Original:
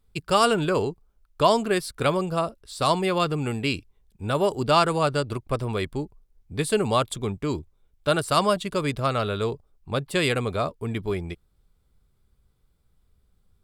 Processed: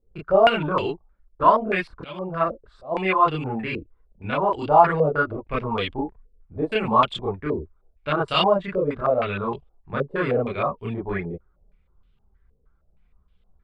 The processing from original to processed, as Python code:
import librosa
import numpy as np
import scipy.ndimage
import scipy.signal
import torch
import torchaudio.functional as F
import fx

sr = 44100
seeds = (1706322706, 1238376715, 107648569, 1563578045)

y = fx.auto_swell(x, sr, attack_ms=407.0, at=(1.71, 2.91), fade=0.02)
y = fx.chorus_voices(y, sr, voices=6, hz=0.37, base_ms=29, depth_ms=3.2, mix_pct=60)
y = fx.filter_held_lowpass(y, sr, hz=6.4, low_hz=490.0, high_hz=3000.0)
y = y * 10.0 ** (1.5 / 20.0)